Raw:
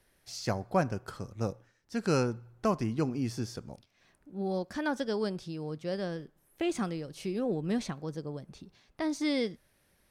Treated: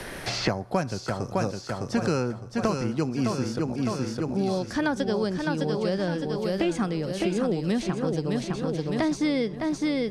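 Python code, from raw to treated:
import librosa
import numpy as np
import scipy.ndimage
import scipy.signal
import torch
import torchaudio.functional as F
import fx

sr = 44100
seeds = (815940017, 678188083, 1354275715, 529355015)

y = scipy.signal.sosfilt(scipy.signal.butter(2, 10000.0, 'lowpass', fs=sr, output='sos'), x)
y = fx.echo_feedback(y, sr, ms=609, feedback_pct=48, wet_db=-6)
y = fx.band_squash(y, sr, depth_pct=100)
y = y * librosa.db_to_amplitude(4.5)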